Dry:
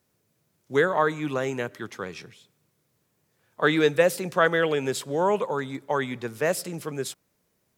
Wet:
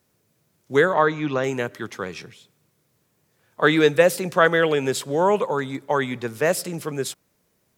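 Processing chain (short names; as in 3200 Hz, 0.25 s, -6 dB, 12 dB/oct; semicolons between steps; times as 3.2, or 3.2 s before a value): 0.94–1.44 steep low-pass 6200 Hz 48 dB/oct; gain +4 dB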